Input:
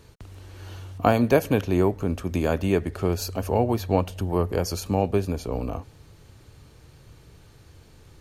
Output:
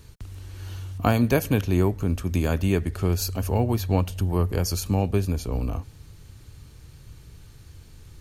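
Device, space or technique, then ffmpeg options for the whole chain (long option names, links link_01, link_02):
smiley-face EQ: -af "lowshelf=frequency=110:gain=8,equalizer=frequency=590:width_type=o:width=1.6:gain=-5.5,highshelf=frequency=5900:gain=6"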